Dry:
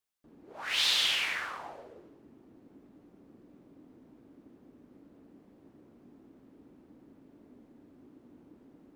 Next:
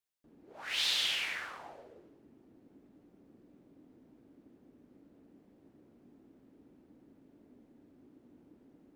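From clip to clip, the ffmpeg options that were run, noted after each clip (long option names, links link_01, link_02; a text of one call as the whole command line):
ffmpeg -i in.wav -af "equalizer=frequency=1100:width_type=o:width=0.62:gain=-3.5,volume=-4dB" out.wav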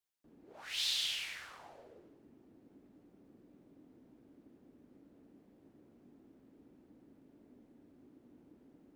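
ffmpeg -i in.wav -filter_complex "[0:a]acrossover=split=130|3000[link_01][link_02][link_03];[link_02]acompressor=threshold=-52dB:ratio=2.5[link_04];[link_01][link_04][link_03]amix=inputs=3:normalize=0,volume=-1dB" out.wav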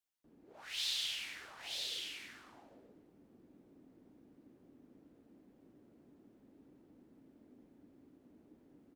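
ffmpeg -i in.wav -af "aecho=1:1:931:0.631,volume=-2.5dB" out.wav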